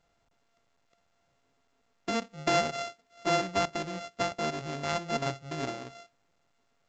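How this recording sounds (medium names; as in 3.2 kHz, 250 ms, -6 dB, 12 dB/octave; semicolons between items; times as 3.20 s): a buzz of ramps at a fixed pitch in blocks of 64 samples; A-law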